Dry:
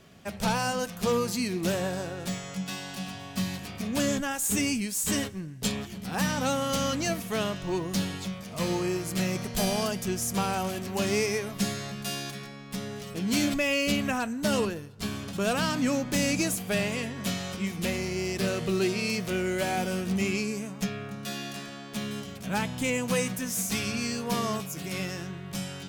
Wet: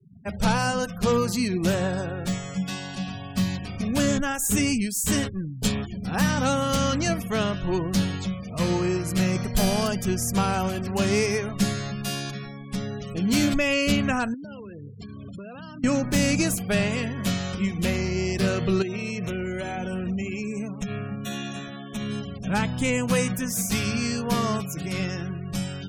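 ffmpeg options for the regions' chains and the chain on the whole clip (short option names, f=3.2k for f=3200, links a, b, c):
-filter_complex "[0:a]asettb=1/sr,asplit=3[a][b][c];[a]atrim=end=14.344[d];[b]atrim=start=14.34:end=15.84,asetpts=PTS-STARTPTS,afade=t=in:d=0.004:c=qsin,afade=t=out:st=1.496:d=0.004:c=qsin,highpass=83,acompressor=threshold=-40dB:ratio=10:attack=3.2:release=140:knee=1:detection=peak[e];[c]atrim=start=15.836[f];[d][e]acrossfade=d=0.004:c1=hsin:c2=qsin[g];[g][f]acrossfade=d=0.004:c1=qsin:c2=hsin,asettb=1/sr,asplit=3[h][i][j];[h]atrim=end=18.824[k];[i]atrim=start=18.82:end=22.09,asetpts=PTS-STARTPTS,afade=t=in:d=0.004:c=qsin,afade=t=out:st=3.266:d=0.004:c=qsin,asuperstop=centerf=4700:order=8:qfactor=4.5,acompressor=threshold=-30dB:ratio=10:attack=3.2:release=140:knee=1:detection=peak,aecho=1:1:162:0.15,atrim=end_sample=144207[l];[j]atrim=start=22.086[m];[k][l]acrossfade=d=0.004:c1=hsin:c2=qsin[n];[n][m]acrossfade=d=0.004:c1=qsin:c2=hsin,adynamicequalizer=threshold=0.00708:dfrequency=1400:dqfactor=2.5:tfrequency=1400:tqfactor=2.5:attack=5:release=100:ratio=0.375:range=1.5:mode=boostabove:tftype=bell,afftfilt=real='re*gte(hypot(re,im),0.00891)':imag='im*gte(hypot(re,im),0.00891)':win_size=1024:overlap=0.75,lowshelf=f=120:g=11.5,volume=2.5dB"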